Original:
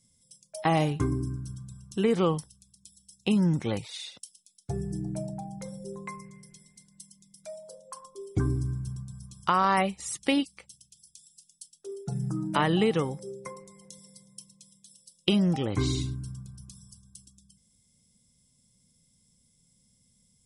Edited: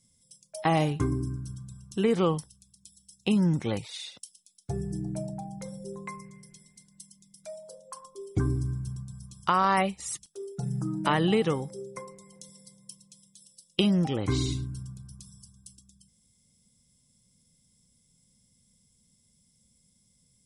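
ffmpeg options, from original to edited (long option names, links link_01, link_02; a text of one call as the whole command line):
ffmpeg -i in.wav -filter_complex "[0:a]asplit=2[link_01][link_02];[link_01]atrim=end=10.262[link_03];[link_02]atrim=start=11.748[link_04];[link_03][link_04]acrossfade=duration=0.004:curve1=hsin:curve2=hsin" out.wav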